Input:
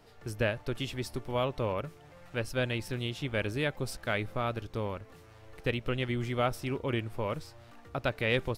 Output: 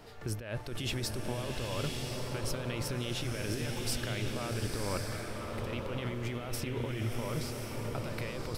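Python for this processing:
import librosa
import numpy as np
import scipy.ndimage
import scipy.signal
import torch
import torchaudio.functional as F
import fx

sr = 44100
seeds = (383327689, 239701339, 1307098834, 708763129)

y = fx.over_compress(x, sr, threshold_db=-38.0, ratio=-1.0)
y = fx.rev_bloom(y, sr, seeds[0], attack_ms=1070, drr_db=1.0)
y = y * librosa.db_to_amplitude(1.0)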